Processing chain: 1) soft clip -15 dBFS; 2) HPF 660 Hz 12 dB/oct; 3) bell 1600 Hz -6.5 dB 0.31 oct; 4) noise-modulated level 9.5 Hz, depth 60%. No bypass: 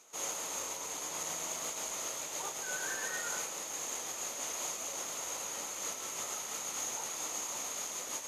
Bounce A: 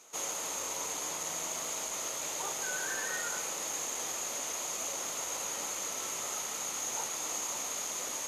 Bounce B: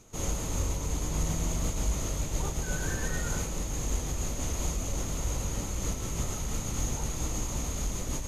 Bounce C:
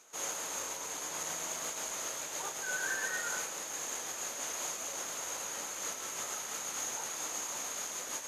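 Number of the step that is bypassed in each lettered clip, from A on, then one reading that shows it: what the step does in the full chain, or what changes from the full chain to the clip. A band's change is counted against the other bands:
4, loudness change +2.5 LU; 2, 125 Hz band +29.5 dB; 3, 2 kHz band +3.5 dB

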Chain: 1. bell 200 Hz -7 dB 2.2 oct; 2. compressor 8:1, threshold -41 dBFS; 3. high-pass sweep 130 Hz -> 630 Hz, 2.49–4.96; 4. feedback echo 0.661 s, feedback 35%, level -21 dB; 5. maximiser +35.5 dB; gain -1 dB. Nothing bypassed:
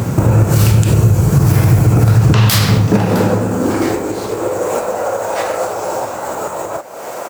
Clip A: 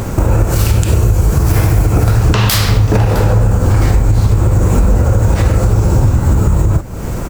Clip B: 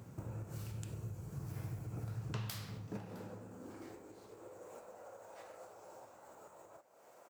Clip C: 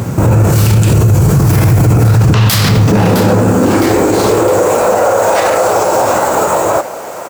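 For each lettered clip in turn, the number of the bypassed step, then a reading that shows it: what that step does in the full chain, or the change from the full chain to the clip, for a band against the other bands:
3, momentary loudness spread change -10 LU; 5, crest factor change +8.5 dB; 2, mean gain reduction 13.5 dB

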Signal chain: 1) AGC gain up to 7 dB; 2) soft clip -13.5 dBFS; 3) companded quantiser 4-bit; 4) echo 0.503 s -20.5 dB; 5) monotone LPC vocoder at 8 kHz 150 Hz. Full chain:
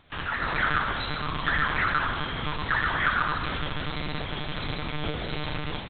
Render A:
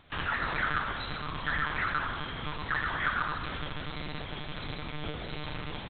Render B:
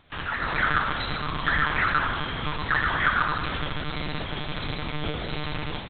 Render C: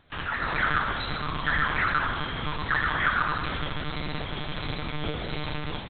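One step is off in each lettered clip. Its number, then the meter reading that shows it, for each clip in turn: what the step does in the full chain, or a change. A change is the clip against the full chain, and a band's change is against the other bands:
1, loudness change -5.5 LU; 2, distortion -20 dB; 3, distortion -14 dB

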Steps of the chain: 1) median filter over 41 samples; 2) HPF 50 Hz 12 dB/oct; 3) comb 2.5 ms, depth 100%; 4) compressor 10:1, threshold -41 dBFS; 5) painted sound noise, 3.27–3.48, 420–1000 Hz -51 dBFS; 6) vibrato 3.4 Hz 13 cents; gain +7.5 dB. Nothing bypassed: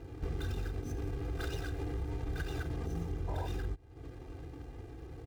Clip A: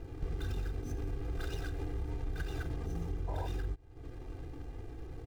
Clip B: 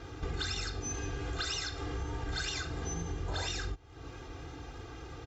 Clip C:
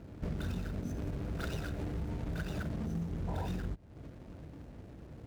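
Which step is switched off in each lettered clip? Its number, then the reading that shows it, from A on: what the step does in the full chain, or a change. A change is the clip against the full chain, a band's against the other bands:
2, momentary loudness spread change -2 LU; 1, 8 kHz band +14.0 dB; 3, 250 Hz band +5.0 dB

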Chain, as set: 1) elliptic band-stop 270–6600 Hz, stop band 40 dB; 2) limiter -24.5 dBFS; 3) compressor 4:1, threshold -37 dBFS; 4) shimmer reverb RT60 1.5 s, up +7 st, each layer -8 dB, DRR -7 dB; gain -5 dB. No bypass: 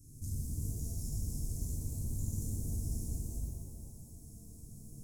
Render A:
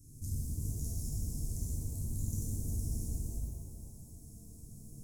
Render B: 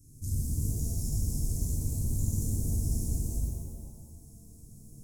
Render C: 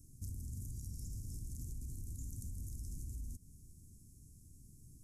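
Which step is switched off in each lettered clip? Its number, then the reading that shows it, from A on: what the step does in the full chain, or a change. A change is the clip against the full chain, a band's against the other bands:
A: 2, mean gain reduction 2.5 dB; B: 3, momentary loudness spread change +6 LU; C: 4, crest factor change -2.5 dB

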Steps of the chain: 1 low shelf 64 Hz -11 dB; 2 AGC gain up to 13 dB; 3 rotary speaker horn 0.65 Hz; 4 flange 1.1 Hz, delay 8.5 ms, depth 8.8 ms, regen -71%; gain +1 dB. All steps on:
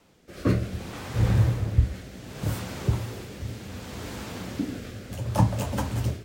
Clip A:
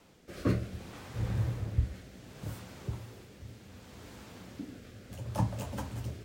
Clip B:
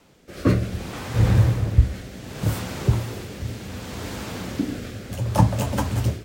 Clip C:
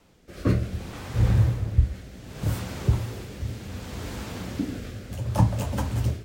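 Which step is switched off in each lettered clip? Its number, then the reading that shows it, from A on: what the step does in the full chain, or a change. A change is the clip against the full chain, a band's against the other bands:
2, loudness change -8.0 LU; 4, loudness change +4.5 LU; 1, 125 Hz band +2.0 dB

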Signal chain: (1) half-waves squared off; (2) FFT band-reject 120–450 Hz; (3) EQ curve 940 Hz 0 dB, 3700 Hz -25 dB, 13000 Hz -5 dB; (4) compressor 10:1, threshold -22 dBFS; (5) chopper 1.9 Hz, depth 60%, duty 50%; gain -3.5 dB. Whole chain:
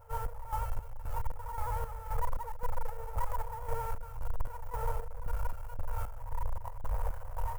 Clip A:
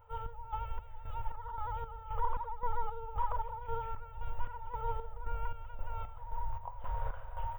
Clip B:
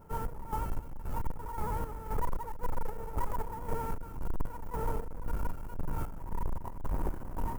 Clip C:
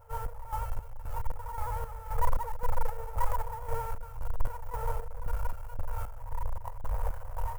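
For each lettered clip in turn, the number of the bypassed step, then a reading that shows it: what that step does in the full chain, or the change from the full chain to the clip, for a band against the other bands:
1, distortion -6 dB; 2, 250 Hz band +18.0 dB; 4, mean gain reduction 1.5 dB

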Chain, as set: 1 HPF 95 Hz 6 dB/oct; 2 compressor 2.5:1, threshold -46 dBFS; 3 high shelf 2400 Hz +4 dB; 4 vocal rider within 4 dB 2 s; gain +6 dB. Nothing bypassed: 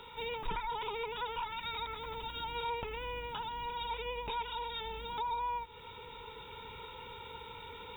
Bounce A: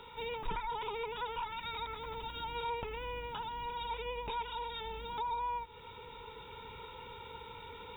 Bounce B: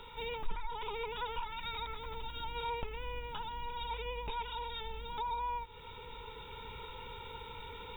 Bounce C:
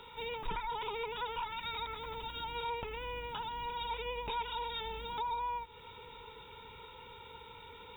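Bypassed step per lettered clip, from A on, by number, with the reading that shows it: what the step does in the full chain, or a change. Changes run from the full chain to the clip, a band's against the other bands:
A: 3, 4 kHz band -2.5 dB; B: 1, 125 Hz band +4.0 dB; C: 4, momentary loudness spread change +3 LU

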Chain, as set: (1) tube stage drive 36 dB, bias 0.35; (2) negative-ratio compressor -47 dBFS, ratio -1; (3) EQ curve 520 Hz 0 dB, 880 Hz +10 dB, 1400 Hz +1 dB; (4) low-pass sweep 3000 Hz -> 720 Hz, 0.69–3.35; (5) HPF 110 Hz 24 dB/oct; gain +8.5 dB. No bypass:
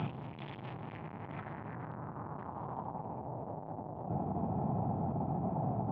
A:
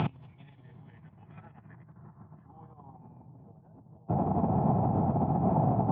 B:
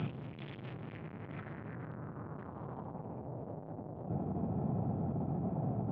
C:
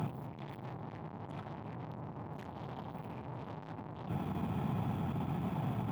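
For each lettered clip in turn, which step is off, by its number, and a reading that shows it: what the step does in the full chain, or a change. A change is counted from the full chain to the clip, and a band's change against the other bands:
1, crest factor change +2.5 dB; 3, 1 kHz band -7.0 dB; 4, loudness change -1.5 LU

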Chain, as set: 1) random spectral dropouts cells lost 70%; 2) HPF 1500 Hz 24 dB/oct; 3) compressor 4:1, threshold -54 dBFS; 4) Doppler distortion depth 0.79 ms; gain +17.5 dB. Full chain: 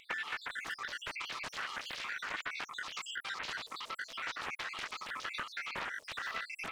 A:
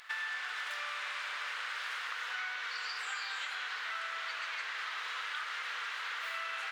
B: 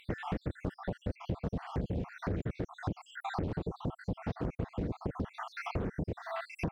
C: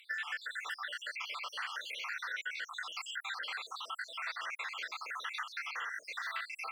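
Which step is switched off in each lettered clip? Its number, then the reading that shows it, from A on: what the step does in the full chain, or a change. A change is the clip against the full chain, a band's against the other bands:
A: 1, 500 Hz band -5.0 dB; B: 2, 125 Hz band +26.5 dB; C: 4, 500 Hz band -6.0 dB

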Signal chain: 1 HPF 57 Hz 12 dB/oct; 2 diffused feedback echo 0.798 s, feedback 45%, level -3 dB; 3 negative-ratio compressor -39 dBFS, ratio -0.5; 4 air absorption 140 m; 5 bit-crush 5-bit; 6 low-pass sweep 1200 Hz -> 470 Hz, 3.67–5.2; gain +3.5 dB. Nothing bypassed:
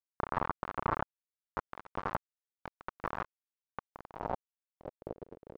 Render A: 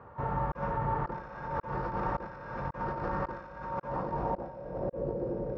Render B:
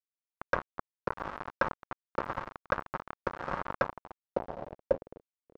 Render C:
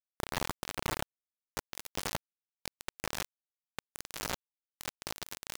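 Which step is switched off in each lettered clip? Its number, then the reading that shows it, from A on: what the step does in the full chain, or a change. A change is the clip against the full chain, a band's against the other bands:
5, crest factor change -10.5 dB; 3, momentary loudness spread change -5 LU; 6, 4 kHz band +20.0 dB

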